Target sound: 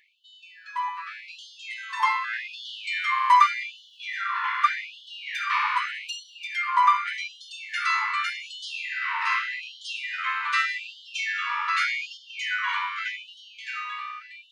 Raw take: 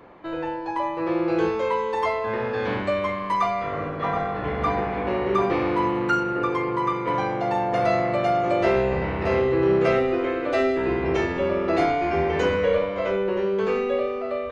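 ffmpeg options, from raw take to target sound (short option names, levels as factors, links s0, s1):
-filter_complex "[0:a]dynaudnorm=f=590:g=7:m=3.76,asettb=1/sr,asplit=3[s0][s1][s2];[s0]atrim=end=12.174[s3];[s1]atrim=start=12.17:end=12.69,asetpts=PTS-STARTPTS,afade=t=in:d=0.004:c=qsin,afade=t=out:st=0.516:d=0.004:c=qsin,tiltshelf=f=1500:g=7[s4];[s2]atrim=start=12.686[s5];[s3][s4]acrossfade=d=0.004:c1=hsin:c2=qsin[s6];[s6][s5]acrossfade=d=0.004:c1=qsin:c2=hsin,afftfilt=real='re*gte(b*sr/1024,860*pow(2900/860,0.5+0.5*sin(2*PI*0.84*pts/sr)))':imag='im*gte(b*sr/1024,860*pow(2900/860,0.5+0.5*sin(2*PI*0.84*pts/sr)))':win_size=1024:overlap=0.75"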